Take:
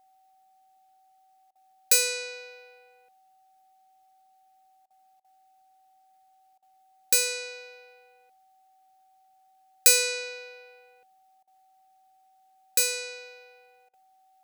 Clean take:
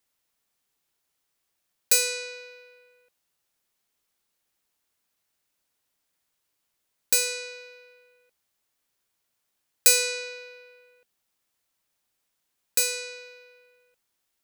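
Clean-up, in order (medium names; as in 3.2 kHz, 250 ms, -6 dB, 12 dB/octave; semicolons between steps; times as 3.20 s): band-stop 760 Hz, Q 30; interpolate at 1.51/4.86/5.20/6.58/11.43/13.89 s, 43 ms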